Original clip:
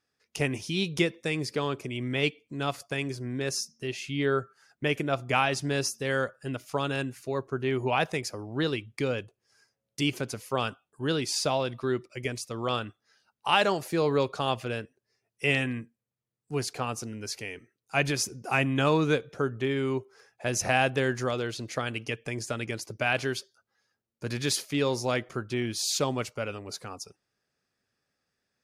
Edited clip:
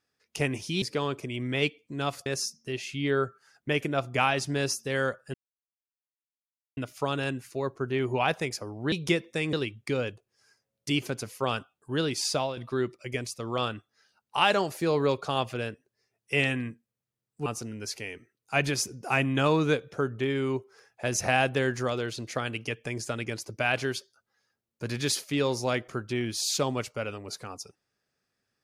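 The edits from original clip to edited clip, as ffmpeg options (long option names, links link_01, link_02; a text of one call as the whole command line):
ffmpeg -i in.wav -filter_complex "[0:a]asplit=8[link_01][link_02][link_03][link_04][link_05][link_06][link_07][link_08];[link_01]atrim=end=0.822[link_09];[link_02]atrim=start=1.428:end=2.872[link_10];[link_03]atrim=start=3.408:end=6.49,asetpts=PTS-STARTPTS,afade=type=out:start_time=3.078:duration=0.004:curve=hsin,apad=pad_dur=1.43[link_11];[link_04]atrim=start=6.49:end=8.642,asetpts=PTS-STARTPTS,afade=type=in:duration=0.004:curve=hsin[link_12];[link_05]atrim=start=0.818:end=1.432[link_13];[link_06]atrim=start=8.638:end=11.68,asetpts=PTS-STARTPTS,afade=type=out:start_time=2.752:duration=0.29:curve=qsin:silence=0.316228[link_14];[link_07]atrim=start=11.68:end=16.572,asetpts=PTS-STARTPTS,afade=type=in:duration=0.004:curve=hsin:silence=0.316228[link_15];[link_08]atrim=start=16.868[link_16];[link_09][link_10]acrossfade=duration=0.004:curve1=hsin:curve2=hsin[link_17];[link_11][link_12]concat=n=2:v=0:a=1[link_18];[link_17][link_18]acrossfade=duration=0.004:curve1=hsin:curve2=hsin[link_19];[link_19][link_13]acrossfade=duration=0.004:curve1=hsin:curve2=hsin[link_20];[link_14][link_15]concat=n=2:v=0:a=1[link_21];[link_20][link_21]acrossfade=duration=0.004:curve1=hsin:curve2=hsin[link_22];[link_22][link_16]acrossfade=duration=0.004:curve1=hsin:curve2=hsin" out.wav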